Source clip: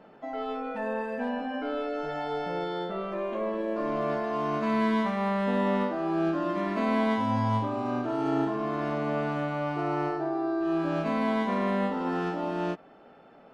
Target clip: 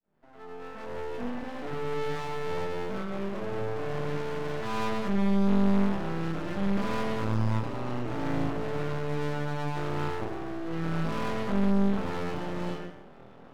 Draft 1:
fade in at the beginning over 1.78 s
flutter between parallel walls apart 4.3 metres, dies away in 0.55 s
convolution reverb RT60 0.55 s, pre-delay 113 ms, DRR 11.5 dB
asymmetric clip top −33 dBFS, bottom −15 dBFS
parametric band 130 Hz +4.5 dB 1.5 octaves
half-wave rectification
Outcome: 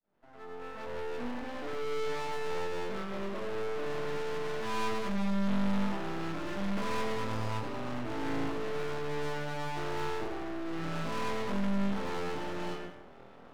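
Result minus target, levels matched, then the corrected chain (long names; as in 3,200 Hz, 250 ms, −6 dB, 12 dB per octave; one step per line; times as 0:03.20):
125 Hz band −3.5 dB
fade in at the beginning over 1.78 s
flutter between parallel walls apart 4.3 metres, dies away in 0.55 s
convolution reverb RT60 0.55 s, pre-delay 113 ms, DRR 11.5 dB
asymmetric clip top −33 dBFS, bottom −15 dBFS
parametric band 130 Hz +13.5 dB 1.5 octaves
half-wave rectification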